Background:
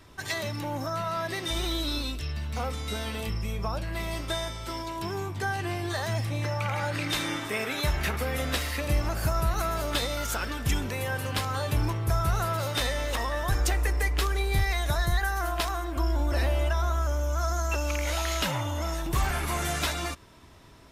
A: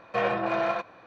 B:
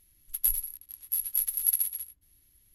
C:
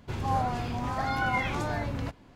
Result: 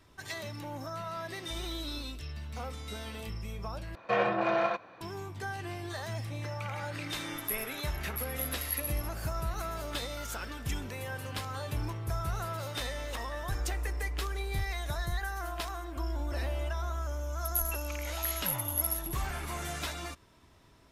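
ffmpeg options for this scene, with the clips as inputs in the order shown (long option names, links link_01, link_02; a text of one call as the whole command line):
ffmpeg -i bed.wav -i cue0.wav -i cue1.wav -filter_complex "[2:a]asplit=2[link_01][link_02];[0:a]volume=-8dB[link_03];[1:a]highpass=43[link_04];[link_02]acontrast=71[link_05];[link_03]asplit=2[link_06][link_07];[link_06]atrim=end=3.954[link_08];[link_04]atrim=end=1.06,asetpts=PTS-STARTPTS,volume=-1.5dB[link_09];[link_07]atrim=start=5.006[link_10];[link_01]atrim=end=2.74,asetpts=PTS-STARTPTS,volume=-9.5dB,afade=type=in:duration=0.004:curve=hsin,afade=type=out:start_time=2.736:duration=0.004:curve=hsin,adelay=7040[link_11];[link_05]atrim=end=2.74,asetpts=PTS-STARTPTS,volume=-12dB,afade=type=in:duration=0.004:curve=hsin,afade=type=out:start_time=2.736:duration=0.004:curve=hsin,adelay=17110[link_12];[link_08][link_09]acrossfade=duration=0.004:curve1=hsin:curve2=hsin[link_13];[link_13][link_10]acrossfade=duration=0.004:curve1=hsin:curve2=hsin[link_14];[link_14][link_11][link_12]amix=inputs=3:normalize=0" out.wav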